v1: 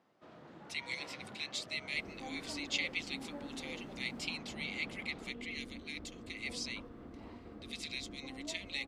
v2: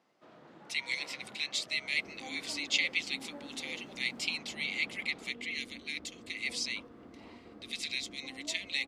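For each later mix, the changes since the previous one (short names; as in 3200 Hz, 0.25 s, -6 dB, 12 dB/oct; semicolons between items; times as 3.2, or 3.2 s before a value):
speech +6.0 dB; master: add HPF 180 Hz 6 dB/oct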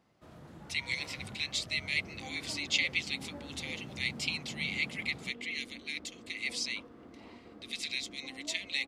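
first sound: remove BPF 290–4300 Hz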